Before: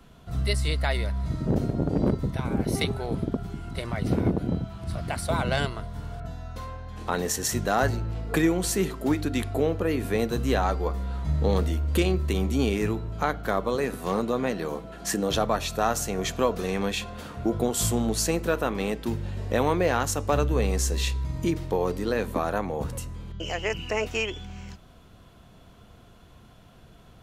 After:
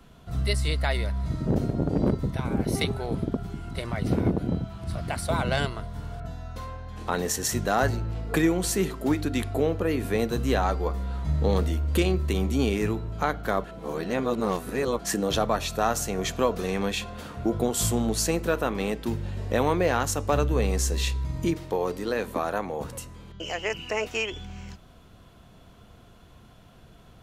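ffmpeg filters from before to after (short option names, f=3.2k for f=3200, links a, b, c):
-filter_complex "[0:a]asettb=1/sr,asplit=3[a][b][c];[a]atrim=end=21.534[d];[b]atrim=start=21.53:end=24.32,asetpts=PTS-STARTPTS,afade=t=in:d=0.004:c=qsin,afade=t=out:st=2.786:d=0.004:c=qsin,lowshelf=f=160:g=-10[e];[c]atrim=start=24.316[f];[d][e]acrossfade=d=0.004:c1=hsin:c2=qsin[g];[g][f]acrossfade=d=0.004:c1=qsin:c2=hsin,asplit=3[h][i][j];[h]atrim=end=13.642[k];[i]atrim=start=13.638:end=14.992,asetpts=PTS-STARTPTS,areverse[l];[j]atrim=start=14.988[m];[k][l]acrossfade=d=0.004:c1=hsin:c2=hsin[n];[n][m]acrossfade=d=0.004:c1=hsin:c2=hsin"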